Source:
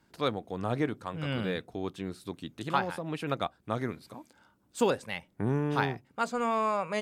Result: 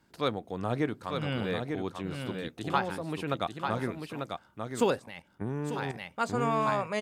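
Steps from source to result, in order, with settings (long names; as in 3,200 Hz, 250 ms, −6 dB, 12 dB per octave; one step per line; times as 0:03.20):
single-tap delay 894 ms −5.5 dB
0:04.99–0:05.95: output level in coarse steps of 11 dB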